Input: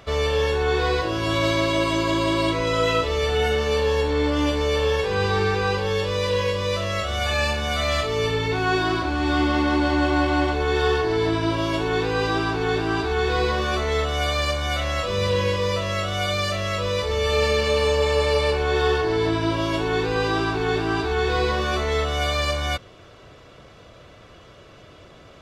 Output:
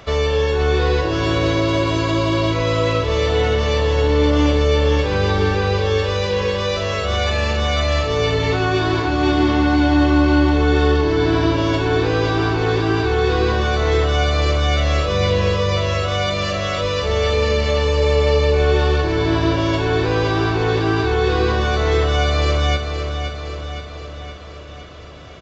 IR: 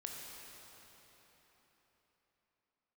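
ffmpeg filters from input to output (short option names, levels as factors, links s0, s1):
-filter_complex "[0:a]acrossover=split=440[s0][s1];[s1]acompressor=threshold=0.0447:ratio=6[s2];[s0][s2]amix=inputs=2:normalize=0,aecho=1:1:518|1036|1554|2072|2590|3108|3626:0.398|0.235|0.139|0.0818|0.0482|0.0285|0.0168,aresample=16000,aresample=44100,volume=1.88"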